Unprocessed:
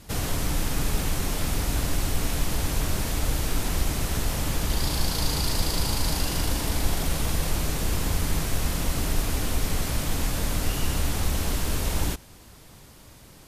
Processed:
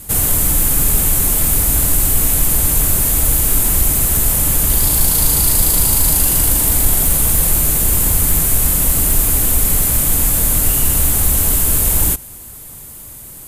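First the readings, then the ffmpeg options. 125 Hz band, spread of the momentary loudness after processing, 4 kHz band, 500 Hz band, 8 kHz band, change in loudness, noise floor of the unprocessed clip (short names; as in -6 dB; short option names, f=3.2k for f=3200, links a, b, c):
+7.5 dB, 2 LU, +5.0 dB, +5.5 dB, +18.5 dB, +15.0 dB, -49 dBFS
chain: -af "aexciter=amount=6.6:drive=5.2:freq=7.4k,acontrast=79,lowshelf=f=130:g=3.5,volume=-1dB"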